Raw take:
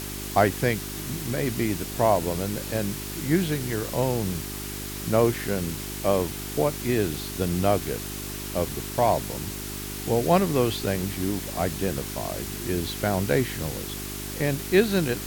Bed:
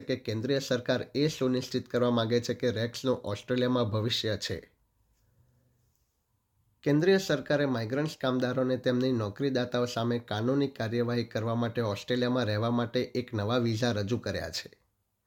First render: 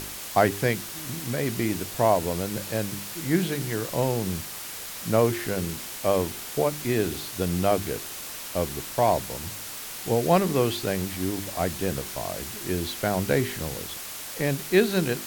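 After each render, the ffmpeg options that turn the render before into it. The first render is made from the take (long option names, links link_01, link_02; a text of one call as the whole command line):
ffmpeg -i in.wav -af "bandreject=frequency=50:width_type=h:width=4,bandreject=frequency=100:width_type=h:width=4,bandreject=frequency=150:width_type=h:width=4,bandreject=frequency=200:width_type=h:width=4,bandreject=frequency=250:width_type=h:width=4,bandreject=frequency=300:width_type=h:width=4,bandreject=frequency=350:width_type=h:width=4,bandreject=frequency=400:width_type=h:width=4" out.wav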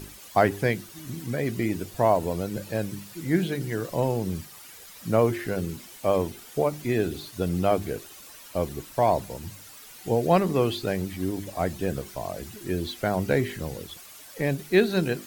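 ffmpeg -i in.wav -af "afftdn=noise_reduction=12:noise_floor=-37" out.wav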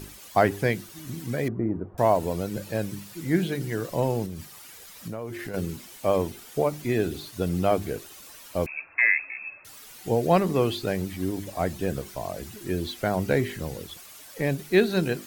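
ffmpeg -i in.wav -filter_complex "[0:a]asettb=1/sr,asplit=3[link_01][link_02][link_03];[link_01]atrim=end=1.484[link_04];[link_02]atrim=start=1.48:end=1.98,asetpts=PTS-STARTPTS,afade=type=in:duration=0.004:curve=qsin,afade=type=out:start_time=0.496:duration=0.004:curve=qsin,lowpass=frequency=1200:width=0.5412,lowpass=frequency=1200:width=1.3066[link_05];[link_03]atrim=start=1.976[link_06];[link_04][link_05]acrossfade=duration=0.004:curve1=hsin:curve2=qsin[link_07];[link_07][link_06]acrossfade=duration=0.004:curve1=qsin:curve2=hsin,asettb=1/sr,asplit=3[link_08][link_09][link_10];[link_08]atrim=end=4.254[link_11];[link_09]atrim=start=4.25:end=5.54,asetpts=PTS-STARTPTS,afade=type=in:duration=0.004:curve=qsin,afade=type=out:start_time=1.286:duration=0.004:curve=qsin,acompressor=threshold=-31dB:ratio=6:attack=3.2:release=140:knee=1:detection=peak[link_12];[link_10]atrim=start=5.536[link_13];[link_11][link_12]acrossfade=duration=0.004:curve1=hsin:curve2=qsin[link_14];[link_14][link_13]acrossfade=duration=0.004:curve1=qsin:curve2=hsin,asettb=1/sr,asplit=3[link_15][link_16][link_17];[link_15]atrim=end=8.664[link_18];[link_16]atrim=start=8.66:end=9.65,asetpts=PTS-STARTPTS,afade=type=in:duration=0.004:curve=qsin,afade=type=out:start_time=0.986:duration=0.004:curve=qsin,lowpass=frequency=2300:width_type=q:width=0.5098,lowpass=frequency=2300:width_type=q:width=0.6013,lowpass=frequency=2300:width_type=q:width=0.9,lowpass=frequency=2300:width_type=q:width=2.563,afreqshift=-2700[link_19];[link_17]atrim=start=9.646[link_20];[link_18][link_19]acrossfade=duration=0.004:curve1=hsin:curve2=qsin[link_21];[link_21][link_20]acrossfade=duration=0.004:curve1=qsin:curve2=hsin" out.wav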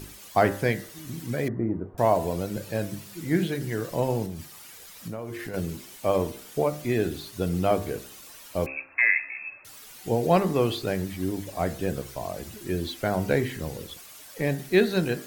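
ffmpeg -i in.wav -af "bandreject=frequency=66.31:width_type=h:width=4,bandreject=frequency=132.62:width_type=h:width=4,bandreject=frequency=198.93:width_type=h:width=4,bandreject=frequency=265.24:width_type=h:width=4,bandreject=frequency=331.55:width_type=h:width=4,bandreject=frequency=397.86:width_type=h:width=4,bandreject=frequency=464.17:width_type=h:width=4,bandreject=frequency=530.48:width_type=h:width=4,bandreject=frequency=596.79:width_type=h:width=4,bandreject=frequency=663.1:width_type=h:width=4,bandreject=frequency=729.41:width_type=h:width=4,bandreject=frequency=795.72:width_type=h:width=4,bandreject=frequency=862.03:width_type=h:width=4,bandreject=frequency=928.34:width_type=h:width=4,bandreject=frequency=994.65:width_type=h:width=4,bandreject=frequency=1060.96:width_type=h:width=4,bandreject=frequency=1127.27:width_type=h:width=4,bandreject=frequency=1193.58:width_type=h:width=4,bandreject=frequency=1259.89:width_type=h:width=4,bandreject=frequency=1326.2:width_type=h:width=4,bandreject=frequency=1392.51:width_type=h:width=4,bandreject=frequency=1458.82:width_type=h:width=4,bandreject=frequency=1525.13:width_type=h:width=4,bandreject=frequency=1591.44:width_type=h:width=4,bandreject=frequency=1657.75:width_type=h:width=4,bandreject=frequency=1724.06:width_type=h:width=4,bandreject=frequency=1790.37:width_type=h:width=4,bandreject=frequency=1856.68:width_type=h:width=4,bandreject=frequency=1922.99:width_type=h:width=4,bandreject=frequency=1989.3:width_type=h:width=4,bandreject=frequency=2055.61:width_type=h:width=4,bandreject=frequency=2121.92:width_type=h:width=4" out.wav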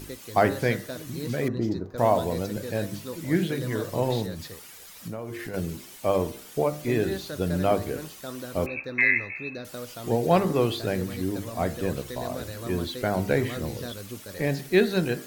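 ffmpeg -i in.wav -i bed.wav -filter_complex "[1:a]volume=-9dB[link_01];[0:a][link_01]amix=inputs=2:normalize=0" out.wav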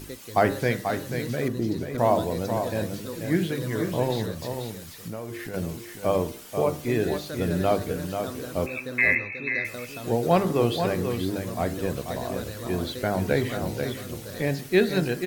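ffmpeg -i in.wav -af "aecho=1:1:487:0.447" out.wav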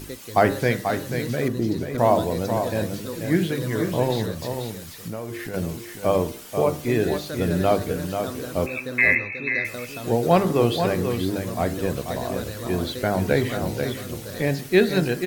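ffmpeg -i in.wav -af "volume=3dB" out.wav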